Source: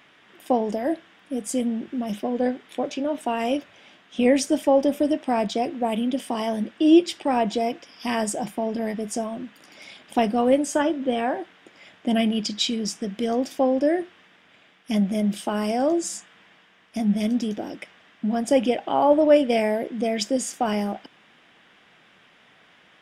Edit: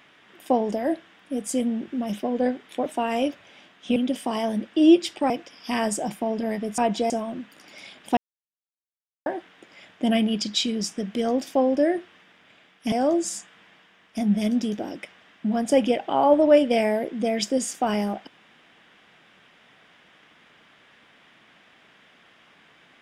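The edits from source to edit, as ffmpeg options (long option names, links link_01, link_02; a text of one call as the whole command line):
ffmpeg -i in.wav -filter_complex "[0:a]asplit=9[link_01][link_02][link_03][link_04][link_05][link_06][link_07][link_08][link_09];[link_01]atrim=end=2.862[link_10];[link_02]atrim=start=3.148:end=4.252[link_11];[link_03]atrim=start=5.998:end=7.342[link_12];[link_04]atrim=start=7.658:end=9.142[link_13];[link_05]atrim=start=7.338:end=7.662[link_14];[link_06]atrim=start=9.138:end=10.21,asetpts=PTS-STARTPTS,afade=type=out:start_time=1.068:duration=0.004:curve=hsin[link_15];[link_07]atrim=start=10.21:end=11.3,asetpts=PTS-STARTPTS,volume=0[link_16];[link_08]atrim=start=11.3:end=14.962,asetpts=PTS-STARTPTS,afade=type=in:duration=0.004:curve=hsin[link_17];[link_09]atrim=start=15.708[link_18];[link_10][link_11]acrossfade=duration=0.004:curve1=hsin:curve2=hsin[link_19];[link_19][link_12]acrossfade=duration=0.004:curve1=hsin:curve2=hsin[link_20];[link_20][link_13]acrossfade=duration=0.004:curve1=hsin:curve2=hsin[link_21];[link_21][link_14]acrossfade=duration=0.004:curve1=hsin:curve2=hsin[link_22];[link_15][link_16][link_17]concat=n=3:v=0:a=1[link_23];[link_22][link_23]acrossfade=duration=0.004:curve1=hsin:curve2=hsin[link_24];[link_24][link_18]acrossfade=duration=0.004:curve1=hsin:curve2=hsin" out.wav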